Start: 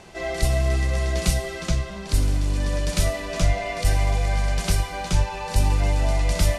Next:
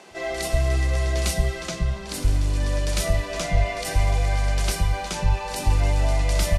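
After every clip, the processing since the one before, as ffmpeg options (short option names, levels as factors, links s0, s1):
-filter_complex "[0:a]acrossover=split=200[s0][s1];[s0]adelay=110[s2];[s2][s1]amix=inputs=2:normalize=0"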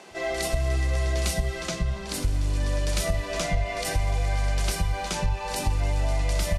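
-af "acompressor=threshold=0.0891:ratio=4"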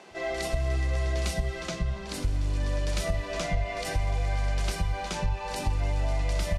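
-af "highshelf=f=8000:g=-10,volume=0.75"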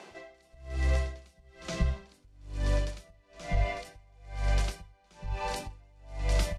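-af "aeval=exprs='val(0)*pow(10,-34*(0.5-0.5*cos(2*PI*1.1*n/s))/20)':c=same,volume=1.26"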